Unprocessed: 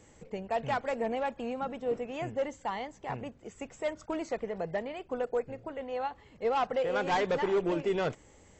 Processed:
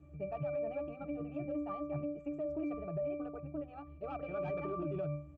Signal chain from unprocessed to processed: tempo 1.6×; pitch-class resonator D, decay 0.44 s; peak limiter -47.5 dBFS, peak gain reduction 9.5 dB; trim +17 dB

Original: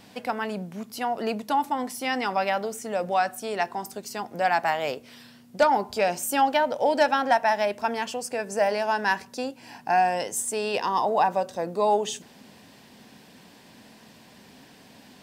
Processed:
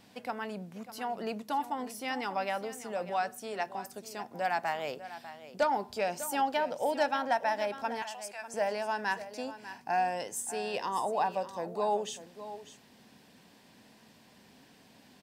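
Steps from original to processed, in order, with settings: 8.02–8.54 s: steep high-pass 730 Hz; on a send: delay 597 ms -13.5 dB; on the sum: trim -8 dB

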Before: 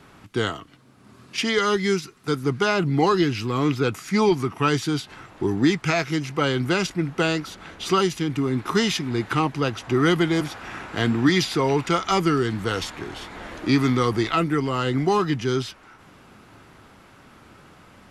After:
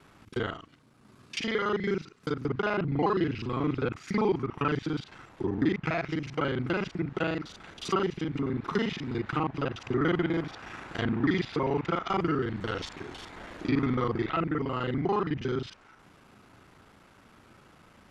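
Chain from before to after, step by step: time reversed locally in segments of 36 ms; low-pass that closes with the level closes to 2.4 kHz, closed at -19 dBFS; trim -6.5 dB

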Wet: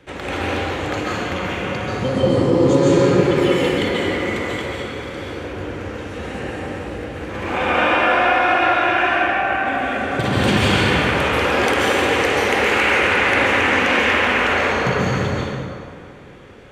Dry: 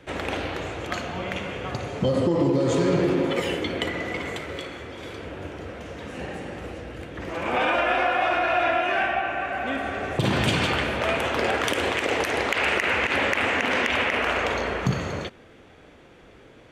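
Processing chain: band-stop 660 Hz, Q 12; plate-style reverb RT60 2.3 s, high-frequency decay 0.6×, pre-delay 120 ms, DRR -6.5 dB

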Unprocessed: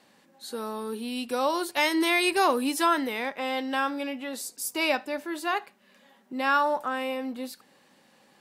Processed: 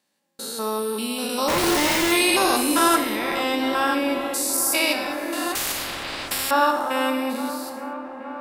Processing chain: spectrogram pixelated in time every 200 ms; gate with hold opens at -48 dBFS; treble shelf 4 kHz +12 dB; 1.48–2.12 s: Schmitt trigger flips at -34.5 dBFS; feedback echo behind a low-pass 433 ms, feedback 80%, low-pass 1.3 kHz, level -11 dB; gated-style reverb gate 260 ms falling, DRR 5.5 dB; 5.55–6.51 s: spectrum-flattening compressor 10:1; trim +5.5 dB

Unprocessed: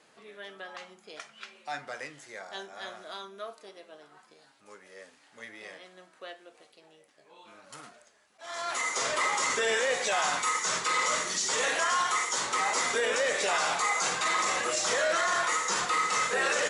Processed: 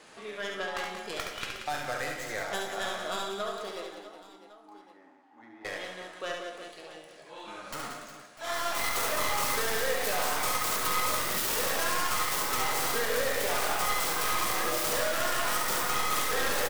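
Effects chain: tracing distortion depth 0.5 ms; 3.86–5.65 s: two resonant band-passes 500 Hz, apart 1.4 oct; on a send at -7 dB: reverberation RT60 0.80 s, pre-delay 9 ms; on the sum: compression 4:1, threshold -38 dBFS, peak gain reduction 13.5 dB; reverse bouncing-ball echo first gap 70 ms, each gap 1.6×, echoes 5; trim +7.5 dB

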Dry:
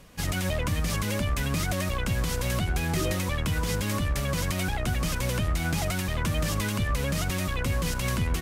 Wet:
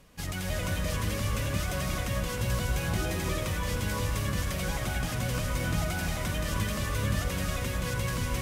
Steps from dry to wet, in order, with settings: gated-style reverb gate 380 ms rising, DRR -0.5 dB; trim -6 dB

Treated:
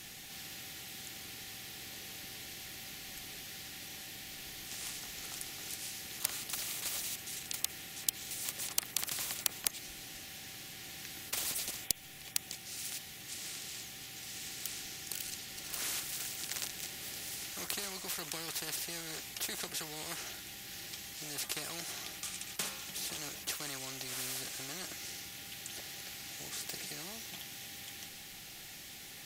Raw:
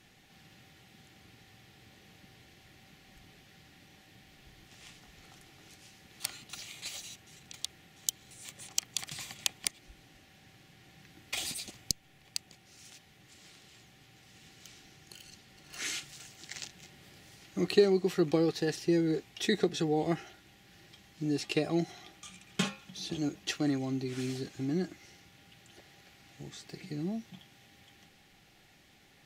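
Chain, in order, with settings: pre-emphasis filter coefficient 0.8; spectrum-flattening compressor 4:1; trim +1 dB

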